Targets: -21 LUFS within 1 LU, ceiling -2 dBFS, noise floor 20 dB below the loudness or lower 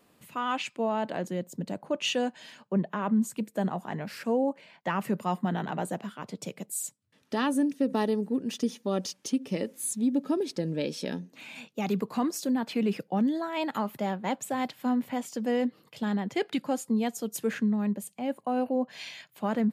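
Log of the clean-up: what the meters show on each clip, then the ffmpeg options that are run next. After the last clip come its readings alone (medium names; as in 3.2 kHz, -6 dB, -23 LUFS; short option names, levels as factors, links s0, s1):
loudness -30.5 LUFS; peak level -16.0 dBFS; loudness target -21.0 LUFS
-> -af "volume=2.99"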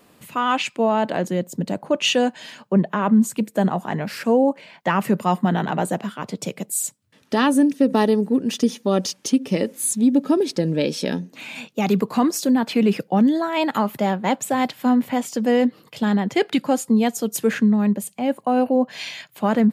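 loudness -21.0 LUFS; peak level -6.5 dBFS; noise floor -56 dBFS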